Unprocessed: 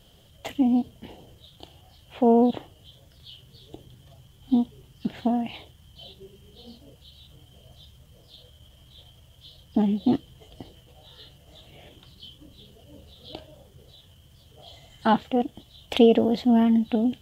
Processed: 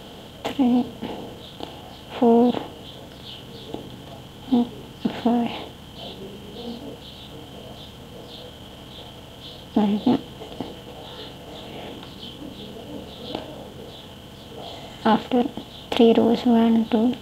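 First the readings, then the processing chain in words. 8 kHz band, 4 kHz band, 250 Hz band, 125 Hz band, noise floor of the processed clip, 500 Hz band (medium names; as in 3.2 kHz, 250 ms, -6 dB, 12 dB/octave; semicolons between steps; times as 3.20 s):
no reading, +6.0 dB, +2.0 dB, +4.0 dB, -42 dBFS, +3.0 dB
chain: spectral levelling over time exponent 0.6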